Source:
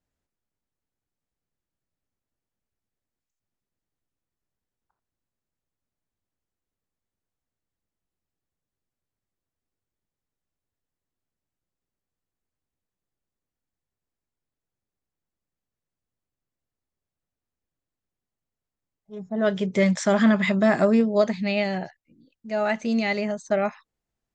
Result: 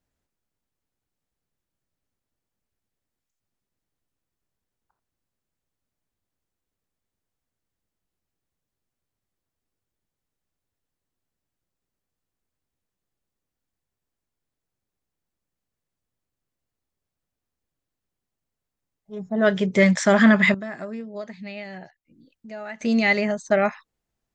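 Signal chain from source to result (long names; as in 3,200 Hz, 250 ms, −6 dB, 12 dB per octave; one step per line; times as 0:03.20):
dynamic equaliser 1,800 Hz, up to +6 dB, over −41 dBFS, Q 2.1
0:20.54–0:22.81: downward compressor 2 to 1, threshold −49 dBFS, peak gain reduction 19 dB
level +3 dB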